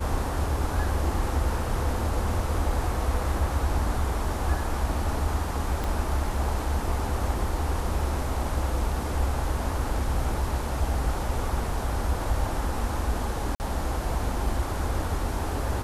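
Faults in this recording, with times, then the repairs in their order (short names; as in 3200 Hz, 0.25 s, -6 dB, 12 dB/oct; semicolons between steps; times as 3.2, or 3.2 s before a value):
5.84 pop
13.55–13.6 gap 49 ms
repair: de-click; interpolate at 13.55, 49 ms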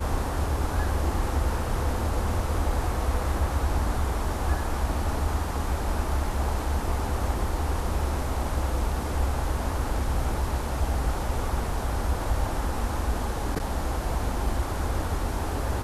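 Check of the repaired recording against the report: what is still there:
5.84 pop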